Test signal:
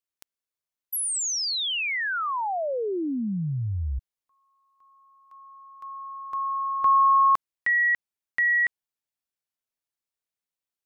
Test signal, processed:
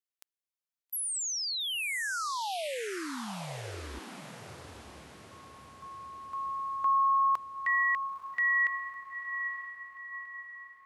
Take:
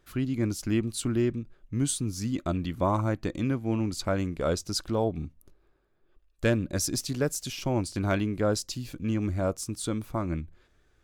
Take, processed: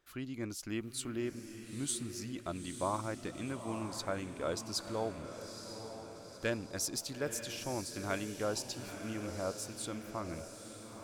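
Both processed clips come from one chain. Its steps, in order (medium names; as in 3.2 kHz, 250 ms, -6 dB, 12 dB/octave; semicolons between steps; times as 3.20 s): bass shelf 300 Hz -11 dB; on a send: echo that smears into a reverb 913 ms, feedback 50%, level -8.5 dB; on the sum: trim -6 dB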